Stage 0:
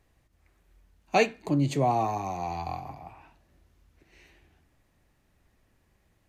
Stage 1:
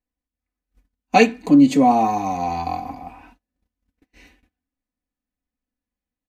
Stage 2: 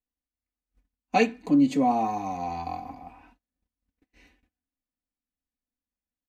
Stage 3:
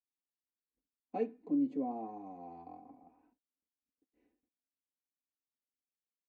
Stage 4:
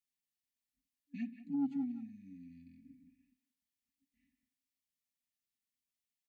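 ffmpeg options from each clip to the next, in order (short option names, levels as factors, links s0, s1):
-af "agate=range=0.0316:threshold=0.00141:ratio=16:detection=peak,equalizer=f=260:t=o:w=0.45:g=8,aecho=1:1:4:0.81,volume=1.88"
-af "highshelf=f=6800:g=-4.5,volume=0.398"
-af "bandpass=f=370:t=q:w=1.8:csg=0,volume=0.376"
-filter_complex "[0:a]afftfilt=real='re*(1-between(b*sr/4096,280,1700))':imag='im*(1-between(b*sr/4096,280,1700))':win_size=4096:overlap=0.75,asoftclip=type=tanh:threshold=0.0335,asplit=2[s0][s1];[s1]adelay=180,highpass=300,lowpass=3400,asoftclip=type=hard:threshold=0.0112,volume=0.282[s2];[s0][s2]amix=inputs=2:normalize=0,volume=1.33"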